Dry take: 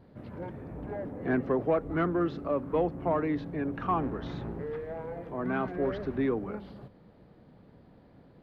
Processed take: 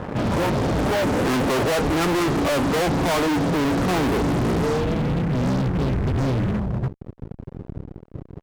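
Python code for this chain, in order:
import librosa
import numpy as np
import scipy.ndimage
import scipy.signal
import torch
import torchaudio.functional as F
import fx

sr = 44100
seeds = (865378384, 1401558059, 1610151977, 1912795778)

y = fx.filter_sweep_lowpass(x, sr, from_hz=1100.0, to_hz=120.0, start_s=3.09, end_s=5.69, q=1.4)
y = fx.fuzz(y, sr, gain_db=52.0, gate_db=-56.0)
y = y * librosa.db_to_amplitude(-6.5)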